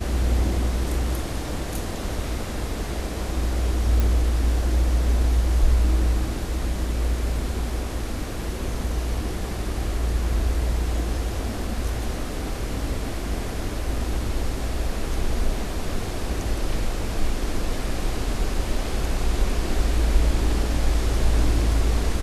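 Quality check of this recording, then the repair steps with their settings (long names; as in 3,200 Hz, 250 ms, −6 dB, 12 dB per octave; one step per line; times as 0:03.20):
0:04.00: click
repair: click removal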